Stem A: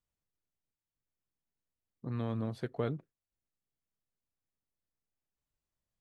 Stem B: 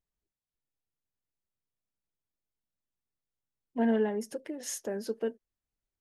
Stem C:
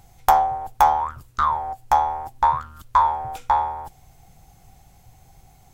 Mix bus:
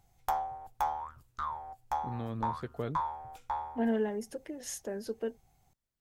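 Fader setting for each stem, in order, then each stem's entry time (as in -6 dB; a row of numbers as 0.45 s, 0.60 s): -2.5 dB, -3.0 dB, -16.0 dB; 0.00 s, 0.00 s, 0.00 s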